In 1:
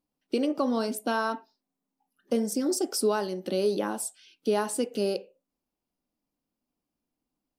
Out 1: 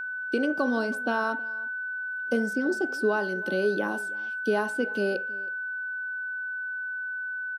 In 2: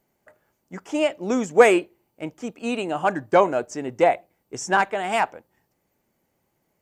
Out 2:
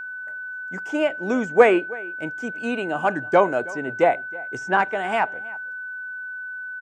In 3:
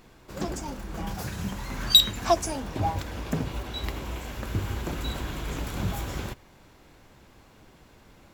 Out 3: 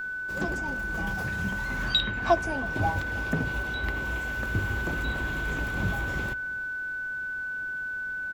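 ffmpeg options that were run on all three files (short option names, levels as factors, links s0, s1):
-filter_complex "[0:a]acrossover=split=620|3300[s0][s1][s2];[s2]acompressor=threshold=0.00316:ratio=6[s3];[s0][s1][s3]amix=inputs=3:normalize=0,aeval=exprs='val(0)+0.0282*sin(2*PI*1500*n/s)':c=same,asplit=2[s4][s5];[s5]adelay=320.7,volume=0.0891,highshelf=f=4000:g=-7.22[s6];[s4][s6]amix=inputs=2:normalize=0"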